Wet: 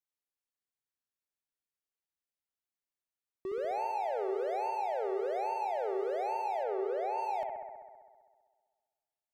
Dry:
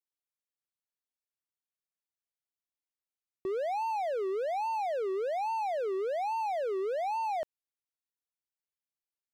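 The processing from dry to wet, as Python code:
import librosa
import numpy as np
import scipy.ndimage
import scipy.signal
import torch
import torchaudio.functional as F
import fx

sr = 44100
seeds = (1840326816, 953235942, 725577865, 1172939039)

y = fx.high_shelf(x, sr, hz=4600.0, db=-10.0, at=(6.63, 7.18))
y = fx.echo_bbd(y, sr, ms=65, stages=1024, feedback_pct=76, wet_db=-5.0)
y = F.gain(torch.from_numpy(y), -4.0).numpy()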